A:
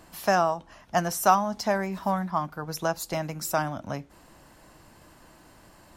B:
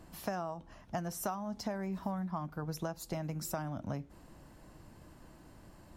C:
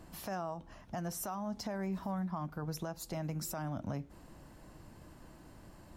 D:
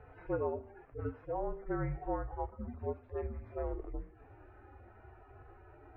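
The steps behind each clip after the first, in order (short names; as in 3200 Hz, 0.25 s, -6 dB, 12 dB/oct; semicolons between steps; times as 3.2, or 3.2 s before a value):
low shelf 450 Hz +10.5 dB; compressor 8:1, threshold -25 dBFS, peak gain reduction 14.5 dB; gain -8.5 dB
limiter -30.5 dBFS, peak gain reduction 8.5 dB; gain +1 dB
median-filter separation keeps harmonic; mistuned SSB -240 Hz 260–2400 Hz; de-hum 78.23 Hz, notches 38; gain +7 dB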